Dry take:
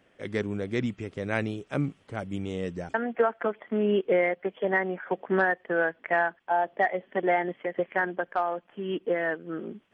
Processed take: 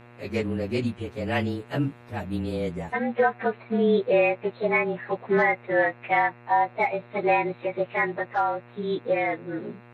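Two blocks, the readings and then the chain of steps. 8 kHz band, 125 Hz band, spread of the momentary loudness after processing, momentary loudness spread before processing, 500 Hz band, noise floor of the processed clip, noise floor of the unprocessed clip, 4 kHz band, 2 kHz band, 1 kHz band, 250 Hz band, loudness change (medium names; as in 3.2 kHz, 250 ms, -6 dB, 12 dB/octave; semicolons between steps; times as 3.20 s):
no reading, +3.5 dB, 9 LU, 9 LU, +2.5 dB, -49 dBFS, -64 dBFS, +4.0 dB, +1.5 dB, +4.5 dB, +2.5 dB, +3.0 dB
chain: frequency axis rescaled in octaves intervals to 108%; mains buzz 120 Hz, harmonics 23, -54 dBFS -4 dB/octave; trim +4.5 dB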